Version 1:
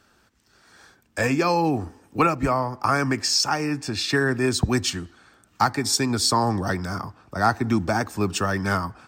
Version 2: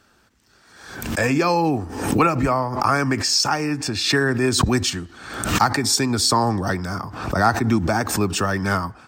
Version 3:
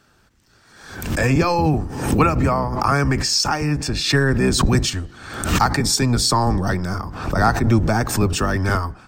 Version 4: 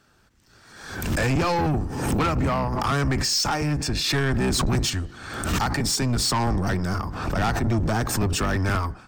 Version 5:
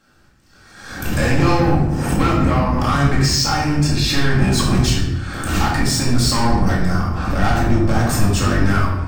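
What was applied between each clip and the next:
background raised ahead of every attack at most 63 dB per second; level +2 dB
sub-octave generator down 1 octave, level +2 dB
automatic gain control gain up to 6 dB; soft clipping −15 dBFS, distortion −10 dB; level −3.5 dB
rectangular room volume 400 cubic metres, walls mixed, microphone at 2.2 metres; level −1 dB

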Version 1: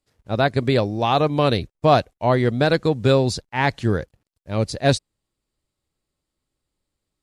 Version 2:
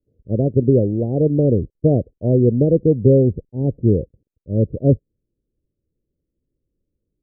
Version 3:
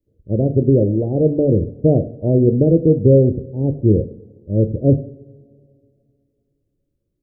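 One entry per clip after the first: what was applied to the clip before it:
Butterworth low-pass 520 Hz 48 dB per octave; level +5.5 dB
coupled-rooms reverb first 0.59 s, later 2.7 s, from −21 dB, DRR 7.5 dB; level +1 dB

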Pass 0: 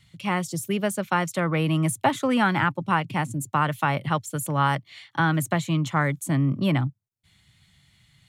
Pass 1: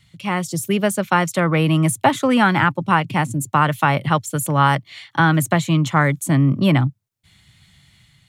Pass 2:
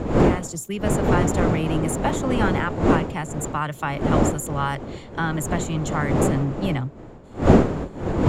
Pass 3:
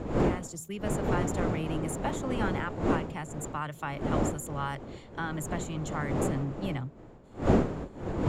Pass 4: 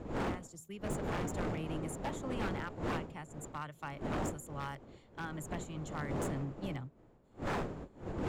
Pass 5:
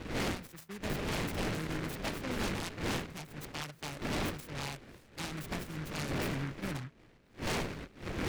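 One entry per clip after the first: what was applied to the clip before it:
automatic gain control gain up to 4.5 dB; level +2.5 dB
wind on the microphone 400 Hz −13 dBFS; parametric band 7,100 Hz +12.5 dB 0.23 octaves; level −9.5 dB
hum removal 81.48 Hz, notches 3; level −9 dB
wave folding −24 dBFS; expander for the loud parts 1.5 to 1, over −43 dBFS; level −5 dB
short delay modulated by noise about 1,500 Hz, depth 0.22 ms; level +1.5 dB

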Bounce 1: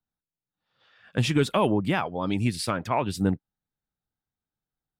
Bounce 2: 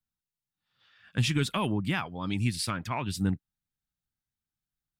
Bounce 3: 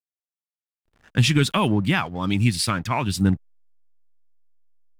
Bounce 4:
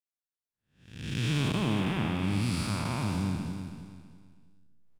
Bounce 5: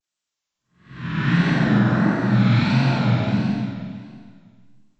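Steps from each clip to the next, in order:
parametric band 540 Hz −12.5 dB 1.8 octaves
slack as between gear wheels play −49 dBFS; level +8.5 dB
spectrum smeared in time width 382 ms; repeating echo 325 ms, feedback 32%, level −8 dB; level −4.5 dB
partials spread apart or drawn together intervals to 77%; reverb whose tail is shaped and stops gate 480 ms falling, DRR −4.5 dB; pitch vibrato 1.5 Hz 97 cents; level +6 dB

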